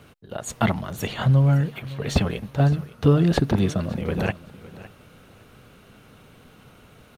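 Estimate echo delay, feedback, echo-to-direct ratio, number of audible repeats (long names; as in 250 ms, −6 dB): 560 ms, 20%, −18.0 dB, 2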